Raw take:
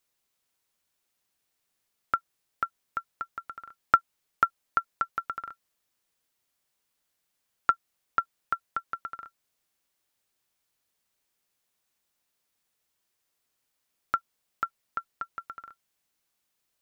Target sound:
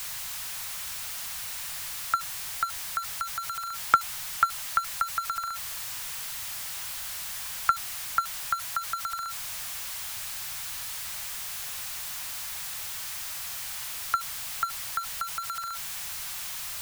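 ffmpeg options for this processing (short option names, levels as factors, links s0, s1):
-filter_complex "[0:a]aeval=exprs='val(0)+0.5*0.0335*sgn(val(0))':c=same,equalizer=f=190:w=1.2:g=5,acrossover=split=140|660[s0][s1][s2];[s1]acrusher=bits=3:mix=0:aa=0.000001[s3];[s0][s3][s2]amix=inputs=3:normalize=0"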